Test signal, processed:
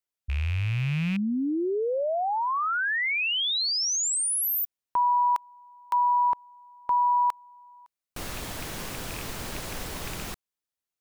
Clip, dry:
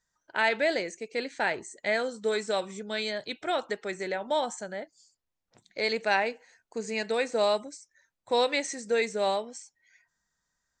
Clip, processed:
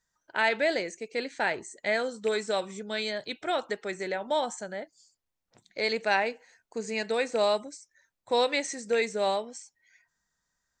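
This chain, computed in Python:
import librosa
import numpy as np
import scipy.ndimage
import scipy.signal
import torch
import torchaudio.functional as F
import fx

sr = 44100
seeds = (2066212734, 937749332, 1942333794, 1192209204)

y = fx.rattle_buzz(x, sr, strikes_db=-34.0, level_db=-25.0)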